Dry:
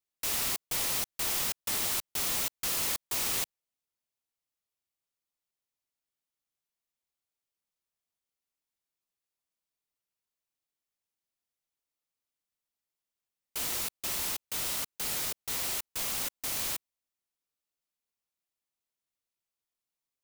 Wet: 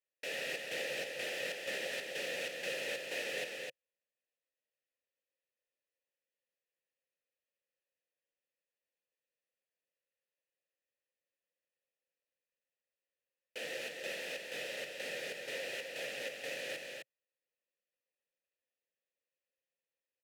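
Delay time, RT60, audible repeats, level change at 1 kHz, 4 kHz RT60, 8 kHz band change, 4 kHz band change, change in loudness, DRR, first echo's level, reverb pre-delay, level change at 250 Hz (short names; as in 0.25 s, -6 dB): 0.257 s, none, 1, -10.5 dB, none, -17.0 dB, -6.5 dB, -9.0 dB, none, -4.5 dB, none, -6.5 dB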